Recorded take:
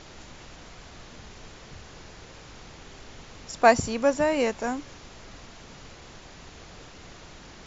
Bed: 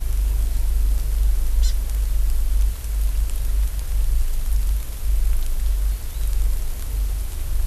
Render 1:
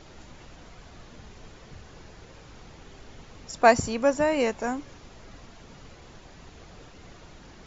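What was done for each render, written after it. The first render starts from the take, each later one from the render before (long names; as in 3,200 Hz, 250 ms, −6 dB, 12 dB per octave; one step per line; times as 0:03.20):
broadband denoise 6 dB, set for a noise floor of −47 dBFS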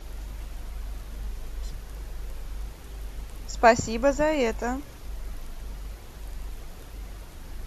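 mix in bed −16.5 dB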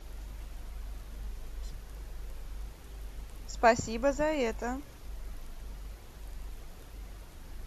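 level −6 dB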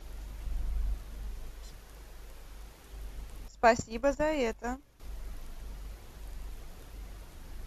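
0:00.46–0:00.95: low-shelf EQ 190 Hz +9.5 dB
0:01.50–0:02.93: low-shelf EQ 220 Hz −7 dB
0:03.48–0:05.00: noise gate −35 dBFS, range −13 dB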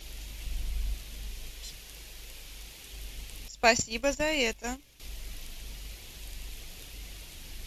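high shelf with overshoot 1,900 Hz +11 dB, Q 1.5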